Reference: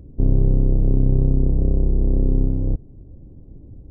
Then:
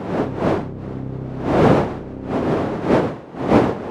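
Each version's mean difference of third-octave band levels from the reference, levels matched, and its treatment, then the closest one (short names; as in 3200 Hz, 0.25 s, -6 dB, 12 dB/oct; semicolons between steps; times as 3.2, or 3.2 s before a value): 13.5 dB: wind noise 490 Hz -13 dBFS; HPF 130 Hz 12 dB/oct; gain -5.5 dB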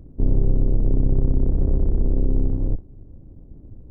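1.5 dB: octaver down 2 oct, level -1 dB; dynamic EQ 150 Hz, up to -4 dB, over -31 dBFS, Q 1.7; gain -2.5 dB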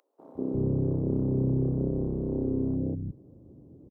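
3.5 dB: HPF 170 Hz 12 dB/oct; three bands offset in time highs, mids, lows 0.19/0.35 s, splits 220/760 Hz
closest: second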